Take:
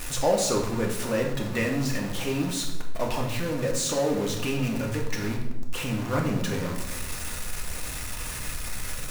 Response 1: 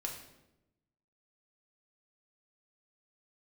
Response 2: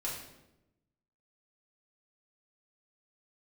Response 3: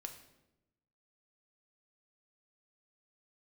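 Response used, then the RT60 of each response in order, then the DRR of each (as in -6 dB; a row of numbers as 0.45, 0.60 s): 1; 0.95, 0.95, 0.95 s; -0.5, -6.5, 4.5 dB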